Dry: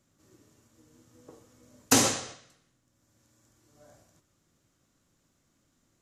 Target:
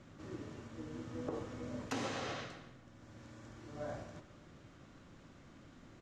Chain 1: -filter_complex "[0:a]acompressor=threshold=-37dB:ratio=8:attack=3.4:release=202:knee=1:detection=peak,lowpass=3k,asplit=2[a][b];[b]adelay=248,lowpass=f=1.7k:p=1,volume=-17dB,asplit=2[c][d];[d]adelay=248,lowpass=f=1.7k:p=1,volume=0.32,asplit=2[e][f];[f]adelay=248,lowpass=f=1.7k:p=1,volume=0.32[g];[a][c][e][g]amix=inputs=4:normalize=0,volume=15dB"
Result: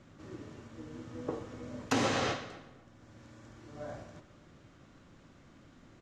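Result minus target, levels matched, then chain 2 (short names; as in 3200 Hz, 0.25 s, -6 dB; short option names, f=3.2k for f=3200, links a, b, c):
compressor: peak gain reduction -9.5 dB
-filter_complex "[0:a]acompressor=threshold=-48dB:ratio=8:attack=3.4:release=202:knee=1:detection=peak,lowpass=3k,asplit=2[a][b];[b]adelay=248,lowpass=f=1.7k:p=1,volume=-17dB,asplit=2[c][d];[d]adelay=248,lowpass=f=1.7k:p=1,volume=0.32,asplit=2[e][f];[f]adelay=248,lowpass=f=1.7k:p=1,volume=0.32[g];[a][c][e][g]amix=inputs=4:normalize=0,volume=15dB"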